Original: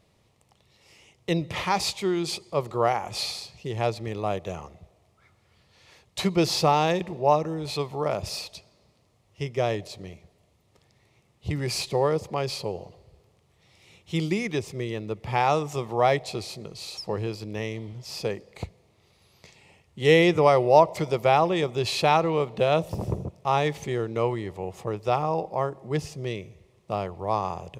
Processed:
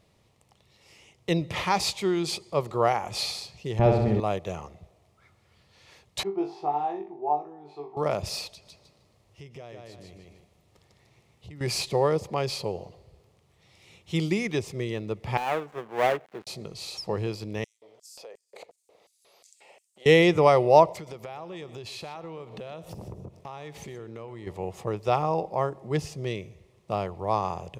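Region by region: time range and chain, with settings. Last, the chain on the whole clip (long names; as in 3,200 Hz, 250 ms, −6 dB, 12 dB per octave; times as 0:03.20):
0:03.79–0:04.20: spectral tilt −4 dB per octave + comb filter 5.1 ms, depth 43% + flutter between parallel walls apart 11.1 metres, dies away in 0.9 s
0:06.23–0:07.97: pair of resonant band-passes 540 Hz, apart 1 octave + low-shelf EQ 490 Hz −4 dB + flutter between parallel walls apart 3.5 metres, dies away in 0.27 s
0:08.50–0:11.61: repeating echo 152 ms, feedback 21%, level −5 dB + downward compressor 3 to 1, threshold −46 dBFS
0:15.37–0:16.47: gap after every zero crossing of 0.27 ms + three-way crossover with the lows and the highs turned down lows −15 dB, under 190 Hz, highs −15 dB, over 2,600 Hz + expander for the loud parts, over −33 dBFS
0:17.64–0:20.06: feedback echo with a low-pass in the loop 64 ms, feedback 77%, low-pass 890 Hz, level −11.5 dB + downward compressor 12 to 1, threshold −42 dBFS + auto-filter high-pass square 2.8 Hz 570–7,900 Hz
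0:20.92–0:24.47: downward compressor, threshold −37 dBFS + single-tap delay 123 ms −15.5 dB
whole clip: no processing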